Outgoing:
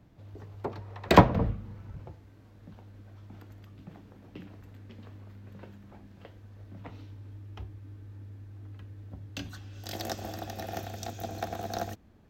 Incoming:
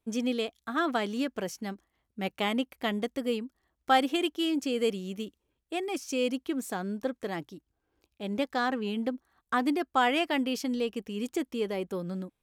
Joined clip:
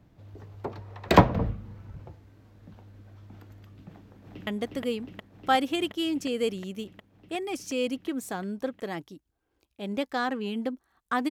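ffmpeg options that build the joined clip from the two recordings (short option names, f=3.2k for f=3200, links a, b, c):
-filter_complex "[0:a]apad=whole_dur=11.3,atrim=end=11.3,atrim=end=4.472[a];[1:a]atrim=start=2.878:end=9.71[b];[a][b]acrossfade=d=0.004:c1=hsin:c2=hsin,asplit=2[c][d];[d]afade=t=in:st=3.89:d=0.01,afade=t=out:st=4.47:d=0.01,aecho=0:1:360|720|1080|1440|1800|2160|2520|2880|3240|3600|3960|4320:0.841395|0.715186|0.607908|0.516722|0.439214|0.373331|0.317332|0.269732|0.229272|0.194881|0.165649|0.140802[e];[c][e]amix=inputs=2:normalize=0"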